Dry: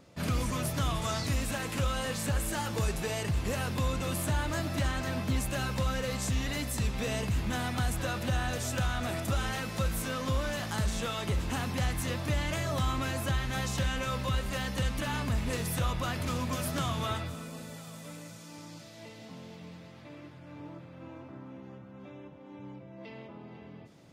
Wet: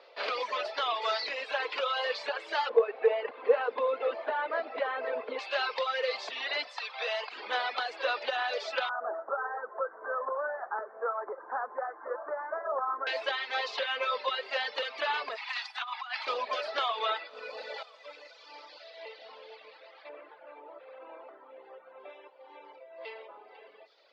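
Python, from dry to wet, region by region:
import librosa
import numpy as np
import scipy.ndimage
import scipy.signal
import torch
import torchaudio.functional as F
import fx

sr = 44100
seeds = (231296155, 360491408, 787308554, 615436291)

y = fx.chain(x, sr, fx.lowpass(hz=1700.0, slope=12),
    fx.low_shelf(hz=200.0, db=-7.0),
    fx.small_body(hz=(250.0, 470.0), ring_ms=55, db=13), at=(2.69, 5.39))
y = fx.chain(y, sr, fx.highpass(hz=590.0, slope=24),
    fx.transformer_sat(knee_hz=1200.0), at=(6.67, 7.32))
y = fx.chain(y, sr, fx.steep_lowpass(hz=1600.0, slope=72),
    fx.low_shelf(hz=280.0, db=-5.5), at=(8.89, 13.07))
y = fx.chain(y, sr, fx.steep_highpass(hz=750.0, slope=72),
    fx.over_compress(threshold_db=-39.0, ratio=-0.5), at=(15.36, 16.27))
y = fx.chain(y, sr, fx.high_shelf(hz=9500.0, db=-11.0),
    fx.doubler(ms=23.0, db=-13.0),
    fx.env_flatten(amount_pct=100), at=(17.29, 17.83))
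y = fx.chain(y, sr, fx.spacing_loss(db_at_10k=26),
    fx.env_flatten(amount_pct=70), at=(20.09, 22.1))
y = fx.dereverb_blind(y, sr, rt60_s=1.9)
y = scipy.signal.sosfilt(scipy.signal.cheby1(4, 1.0, [440.0, 4600.0], 'bandpass', fs=sr, output='sos'), y)
y = y * librosa.db_to_amplitude(7.0)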